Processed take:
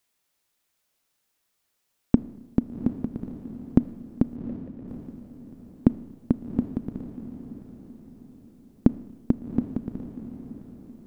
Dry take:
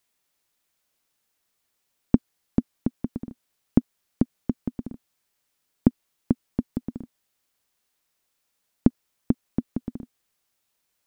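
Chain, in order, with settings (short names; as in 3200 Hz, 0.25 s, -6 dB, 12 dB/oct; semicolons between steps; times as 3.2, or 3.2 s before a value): 4.36–4.88 vowel filter e; diffused feedback echo 0.755 s, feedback 42%, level -11 dB; Schroeder reverb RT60 1.2 s, combs from 26 ms, DRR 17 dB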